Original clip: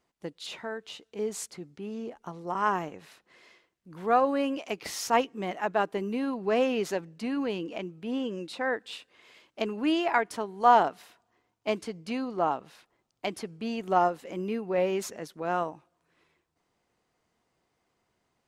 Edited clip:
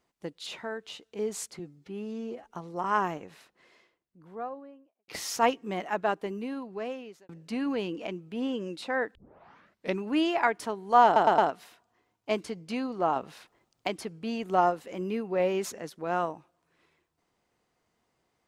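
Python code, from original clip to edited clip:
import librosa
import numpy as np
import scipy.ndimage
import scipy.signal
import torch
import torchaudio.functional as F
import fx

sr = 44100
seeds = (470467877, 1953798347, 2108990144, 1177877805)

y = fx.studio_fade_out(x, sr, start_s=2.79, length_s=2.0)
y = fx.edit(y, sr, fx.stretch_span(start_s=1.59, length_s=0.58, factor=1.5),
    fx.fade_out_span(start_s=5.59, length_s=1.41),
    fx.tape_start(start_s=8.86, length_s=0.89),
    fx.stutter(start_s=10.76, slice_s=0.11, count=4),
    fx.clip_gain(start_s=12.54, length_s=0.71, db=4.5), tone=tone)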